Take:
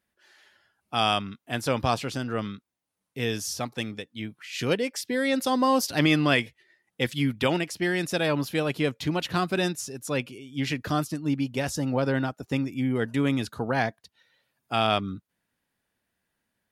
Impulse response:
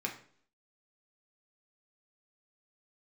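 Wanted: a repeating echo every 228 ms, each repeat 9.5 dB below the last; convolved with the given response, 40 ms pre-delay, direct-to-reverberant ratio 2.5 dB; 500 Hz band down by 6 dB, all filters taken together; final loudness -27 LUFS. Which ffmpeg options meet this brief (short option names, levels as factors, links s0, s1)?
-filter_complex "[0:a]equalizer=f=500:t=o:g=-7.5,aecho=1:1:228|456|684|912:0.335|0.111|0.0365|0.012,asplit=2[s0][s1];[1:a]atrim=start_sample=2205,adelay=40[s2];[s1][s2]afir=irnorm=-1:irlink=0,volume=0.531[s3];[s0][s3]amix=inputs=2:normalize=0,volume=0.944"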